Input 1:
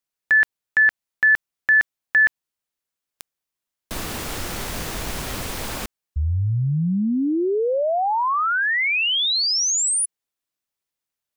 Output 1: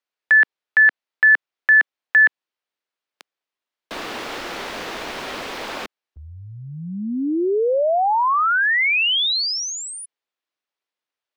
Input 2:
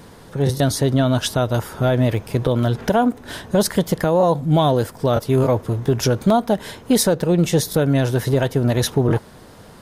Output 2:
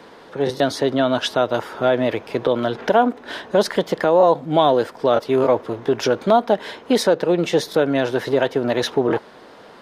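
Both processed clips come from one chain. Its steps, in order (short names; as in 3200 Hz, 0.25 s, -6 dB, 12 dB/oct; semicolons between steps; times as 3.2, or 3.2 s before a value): three-band isolator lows -21 dB, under 260 Hz, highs -18 dB, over 4800 Hz; gain +3 dB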